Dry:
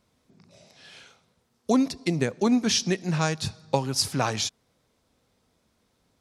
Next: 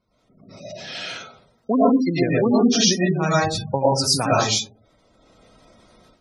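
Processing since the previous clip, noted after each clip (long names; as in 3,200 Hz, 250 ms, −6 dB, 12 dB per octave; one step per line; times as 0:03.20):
comb and all-pass reverb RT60 0.41 s, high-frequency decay 0.4×, pre-delay 70 ms, DRR −7 dB
automatic gain control gain up to 15 dB
gate on every frequency bin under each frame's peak −20 dB strong
level −4 dB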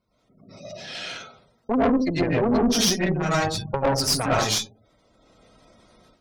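tube saturation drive 17 dB, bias 0.75
level +2 dB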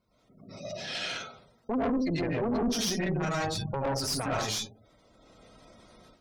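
brickwall limiter −22 dBFS, peak gain reduction 10.5 dB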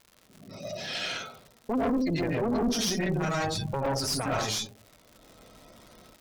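surface crackle 190 per second −42 dBFS
level +1.5 dB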